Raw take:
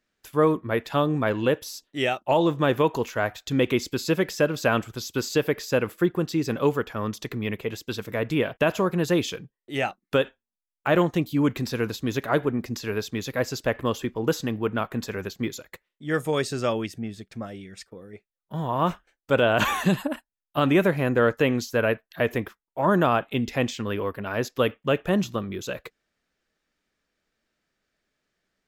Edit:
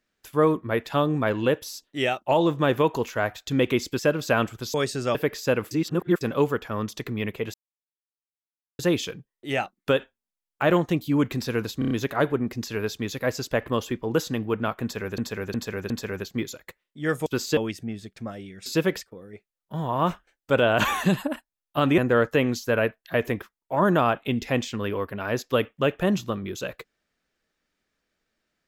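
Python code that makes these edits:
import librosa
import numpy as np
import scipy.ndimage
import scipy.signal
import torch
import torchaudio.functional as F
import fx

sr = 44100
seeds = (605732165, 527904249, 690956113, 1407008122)

y = fx.edit(x, sr, fx.move(start_s=3.99, length_s=0.35, to_s=17.81),
    fx.swap(start_s=5.09, length_s=0.31, other_s=16.31, other_length_s=0.41),
    fx.reverse_span(start_s=5.96, length_s=0.5),
    fx.silence(start_s=7.79, length_s=1.25),
    fx.stutter(start_s=12.04, slice_s=0.03, count=5),
    fx.repeat(start_s=14.95, length_s=0.36, count=4),
    fx.cut(start_s=20.78, length_s=0.26), tone=tone)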